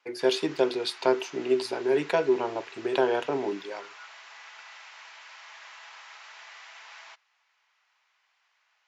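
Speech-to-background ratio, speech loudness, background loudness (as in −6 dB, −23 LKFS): 18.5 dB, −27.5 LKFS, −46.0 LKFS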